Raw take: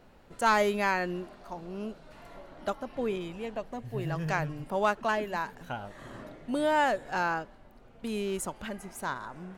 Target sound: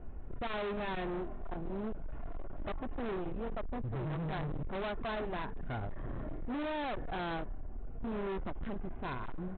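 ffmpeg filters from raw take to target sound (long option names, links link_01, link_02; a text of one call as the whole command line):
ffmpeg -i in.wav -af "lowpass=2000,aemphasis=mode=reproduction:type=riaa,aecho=1:1:2.8:0.35,aresample=8000,volume=33.5dB,asoftclip=hard,volume=-33.5dB,aresample=44100,volume=-1.5dB" out.wav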